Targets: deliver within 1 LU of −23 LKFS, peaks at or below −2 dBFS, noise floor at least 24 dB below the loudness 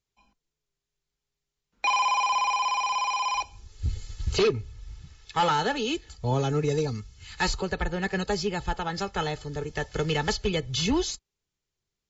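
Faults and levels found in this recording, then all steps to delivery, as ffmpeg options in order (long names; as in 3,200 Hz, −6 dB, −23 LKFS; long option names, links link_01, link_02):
integrated loudness −27.5 LKFS; sample peak −15.5 dBFS; target loudness −23.0 LKFS
→ -af "volume=4.5dB"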